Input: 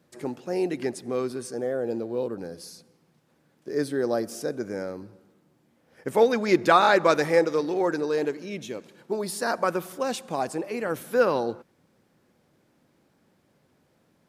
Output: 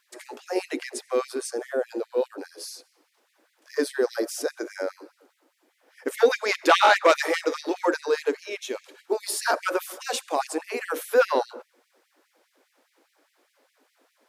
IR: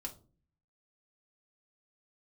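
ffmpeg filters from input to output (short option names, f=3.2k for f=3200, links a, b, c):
-filter_complex "[0:a]aeval=exprs='0.596*sin(PI/2*2*val(0)/0.596)':c=same,bandreject=f=60:t=h:w=6,bandreject=f=120:t=h:w=6,bandreject=f=180:t=h:w=6,bandreject=f=240:t=h:w=6,bandreject=f=300:t=h:w=6,bandreject=f=360:t=h:w=6,bandreject=f=420:t=h:w=6,bandreject=f=480:t=h:w=6,bandreject=f=540:t=h:w=6,bandreject=f=600:t=h:w=6,asplit=2[a][b];[1:a]atrim=start_sample=2205,asetrate=79380,aresample=44100[c];[b][c]afir=irnorm=-1:irlink=0,volume=-15dB[d];[a][d]amix=inputs=2:normalize=0,afftfilt=real='re*gte(b*sr/1024,240*pow(1900/240,0.5+0.5*sin(2*PI*4.9*pts/sr)))':imag='im*gte(b*sr/1024,240*pow(1900/240,0.5+0.5*sin(2*PI*4.9*pts/sr)))':win_size=1024:overlap=0.75,volume=-5dB"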